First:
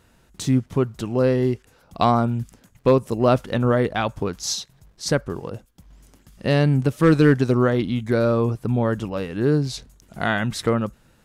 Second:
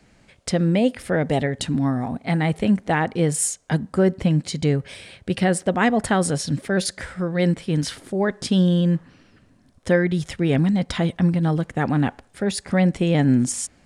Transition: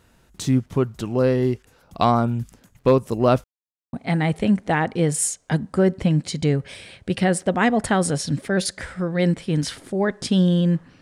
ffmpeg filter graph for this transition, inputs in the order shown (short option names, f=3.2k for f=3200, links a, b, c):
-filter_complex "[0:a]apad=whole_dur=11.01,atrim=end=11.01,asplit=2[a][b];[a]atrim=end=3.44,asetpts=PTS-STARTPTS,afade=t=out:st=3.436:d=0.004:c=hsin[c];[b]atrim=start=3.44:end=3.93,asetpts=PTS-STARTPTS,volume=0[d];[1:a]atrim=start=2.13:end=9.21,asetpts=PTS-STARTPTS,afade=t=in:d=0.004:c=hsin[e];[c][d][e]concat=n=3:v=0:a=1"